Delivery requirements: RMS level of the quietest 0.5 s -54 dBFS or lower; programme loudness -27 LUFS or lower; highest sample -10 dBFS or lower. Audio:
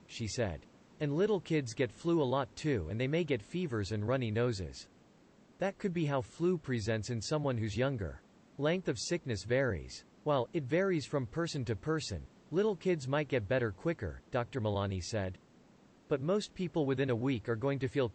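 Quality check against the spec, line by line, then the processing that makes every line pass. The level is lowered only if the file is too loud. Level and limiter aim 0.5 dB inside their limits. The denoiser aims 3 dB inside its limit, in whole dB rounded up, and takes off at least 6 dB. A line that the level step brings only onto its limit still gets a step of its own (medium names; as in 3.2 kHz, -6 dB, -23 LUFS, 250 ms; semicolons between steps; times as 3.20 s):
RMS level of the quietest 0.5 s -63 dBFS: pass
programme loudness -34.5 LUFS: pass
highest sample -19.0 dBFS: pass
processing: none needed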